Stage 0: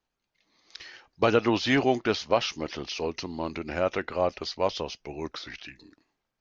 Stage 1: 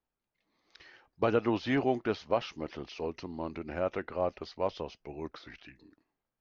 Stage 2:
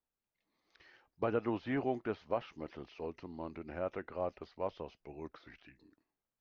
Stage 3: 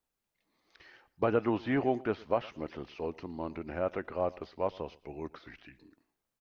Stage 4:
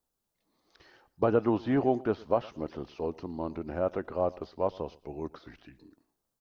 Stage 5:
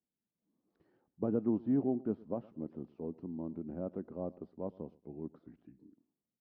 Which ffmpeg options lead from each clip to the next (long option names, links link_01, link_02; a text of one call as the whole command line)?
ffmpeg -i in.wav -af "lowpass=frequency=1500:poles=1,volume=-4.5dB" out.wav
ffmpeg -i in.wav -filter_complex "[0:a]acrossover=split=2700[link_01][link_02];[link_02]acompressor=threshold=-60dB:ratio=4:attack=1:release=60[link_03];[link_01][link_03]amix=inputs=2:normalize=0,volume=-6dB" out.wav
ffmpeg -i in.wav -af "aecho=1:1:114|228:0.0794|0.0214,volume=5.5dB" out.wav
ffmpeg -i in.wav -af "equalizer=frequency=2200:width_type=o:width=1.1:gain=-10,volume=3.5dB" out.wav
ffmpeg -i in.wav -af "bandpass=frequency=210:width_type=q:width=1.8:csg=0" out.wav